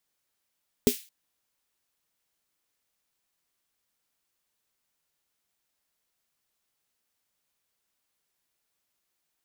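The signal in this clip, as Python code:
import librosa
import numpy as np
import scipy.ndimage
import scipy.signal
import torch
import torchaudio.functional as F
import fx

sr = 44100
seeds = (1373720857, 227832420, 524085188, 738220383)

y = fx.drum_snare(sr, seeds[0], length_s=0.22, hz=250.0, second_hz=410.0, noise_db=-11, noise_from_hz=2300.0, decay_s=0.09, noise_decay_s=0.35)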